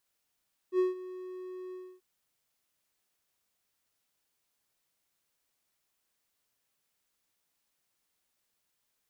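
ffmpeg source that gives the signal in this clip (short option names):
-f lavfi -i "aevalsrc='0.1*(1-4*abs(mod(368*t+0.25,1)-0.5))':d=1.286:s=44100,afade=t=in:d=0.07,afade=t=out:st=0.07:d=0.153:silence=0.133,afade=t=out:st=1.01:d=0.276"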